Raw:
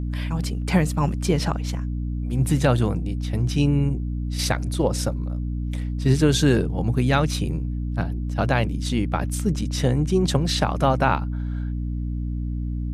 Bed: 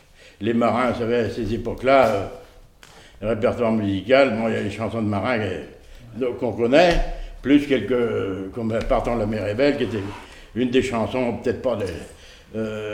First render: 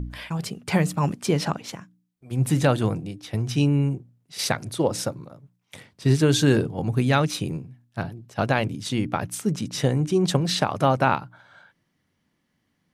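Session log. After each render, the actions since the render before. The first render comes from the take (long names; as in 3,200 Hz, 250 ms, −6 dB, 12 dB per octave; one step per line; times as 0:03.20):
hum removal 60 Hz, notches 5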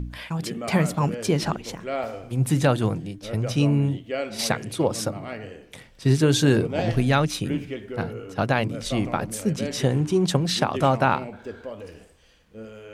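mix in bed −13.5 dB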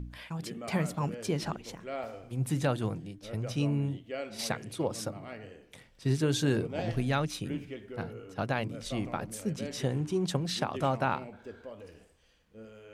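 level −9 dB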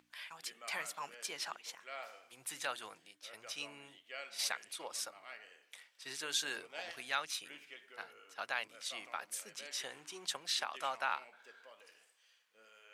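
high-pass filter 1,300 Hz 12 dB per octave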